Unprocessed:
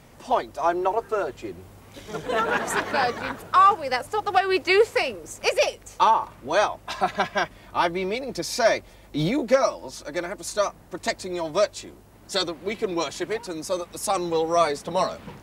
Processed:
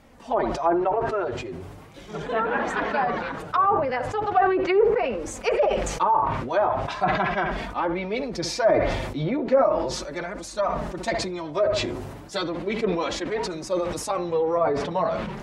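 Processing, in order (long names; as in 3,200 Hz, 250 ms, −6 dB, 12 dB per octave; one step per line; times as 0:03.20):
high-shelf EQ 4,500 Hz −8 dB
feedback echo with a low-pass in the loop 66 ms, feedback 33%, low-pass 2,000 Hz, level −16.5 dB
treble cut that deepens with the level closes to 1,000 Hz, closed at −16.5 dBFS
flanger 0.38 Hz, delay 3.5 ms, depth 4.9 ms, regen −18%
level that may fall only so fast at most 39 dB per second
level +2 dB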